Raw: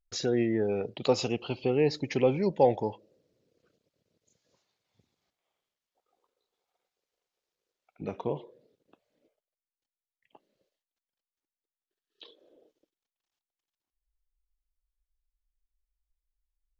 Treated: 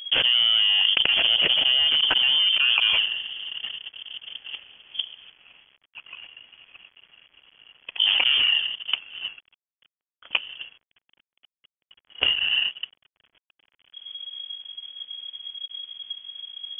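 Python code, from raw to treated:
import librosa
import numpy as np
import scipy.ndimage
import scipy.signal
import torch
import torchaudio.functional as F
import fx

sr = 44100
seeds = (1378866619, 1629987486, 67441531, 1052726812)

y = scipy.ndimage.median_filter(x, 41, mode='constant')
y = fx.freq_invert(y, sr, carrier_hz=3300)
y = fx.env_flatten(y, sr, amount_pct=100)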